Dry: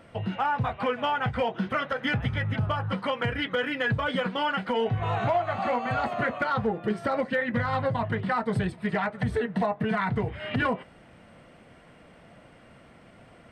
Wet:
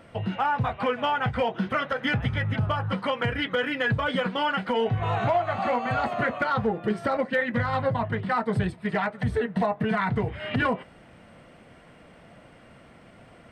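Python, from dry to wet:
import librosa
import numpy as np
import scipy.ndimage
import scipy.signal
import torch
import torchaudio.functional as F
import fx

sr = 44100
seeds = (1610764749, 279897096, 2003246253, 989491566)

y = fx.band_widen(x, sr, depth_pct=70, at=(7.17, 9.57))
y = y * 10.0 ** (1.5 / 20.0)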